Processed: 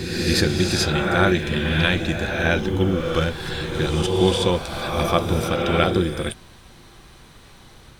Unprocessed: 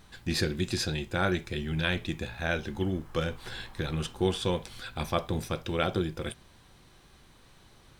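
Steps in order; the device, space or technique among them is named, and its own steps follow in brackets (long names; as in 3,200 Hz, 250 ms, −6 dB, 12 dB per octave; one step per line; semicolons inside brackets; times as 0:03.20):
reverse reverb (reversed playback; convolution reverb RT60 1.9 s, pre-delay 41 ms, DRR 2 dB; reversed playback)
level +8.5 dB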